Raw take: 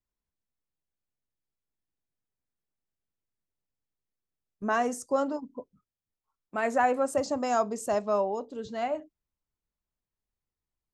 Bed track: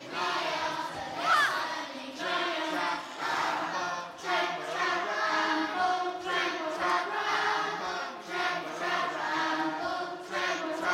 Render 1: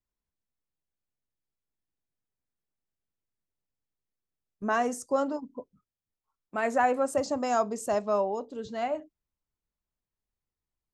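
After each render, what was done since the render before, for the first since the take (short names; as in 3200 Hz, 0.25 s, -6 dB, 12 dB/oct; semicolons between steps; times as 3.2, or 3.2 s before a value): nothing audible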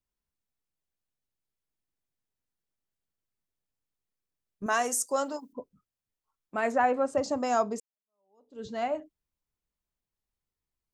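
4.66–5.53 RIAA curve recording; 6.72–7.24 air absorption 87 m; 7.8–8.63 fade in exponential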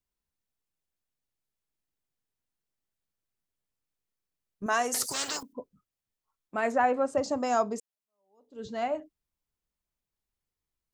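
4.94–5.43 spectral compressor 10:1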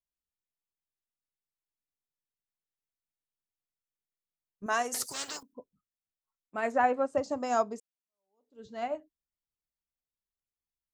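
upward expander 1.5:1, over -44 dBFS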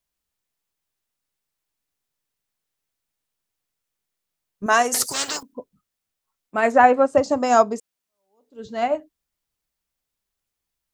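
gain +12 dB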